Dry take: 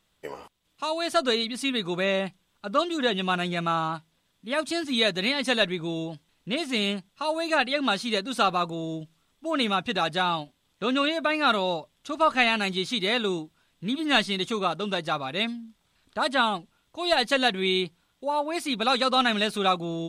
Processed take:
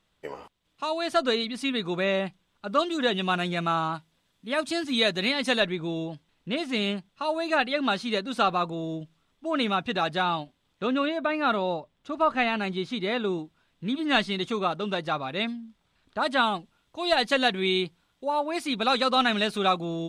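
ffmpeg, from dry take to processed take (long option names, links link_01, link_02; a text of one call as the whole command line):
ffmpeg -i in.wav -af "asetnsamples=nb_out_samples=441:pad=0,asendcmd='2.69 lowpass f 9300;5.6 lowpass f 3500;10.87 lowpass f 1500;13.39 lowpass f 3300;16.27 lowpass f 6400',lowpass=frequency=4200:poles=1" out.wav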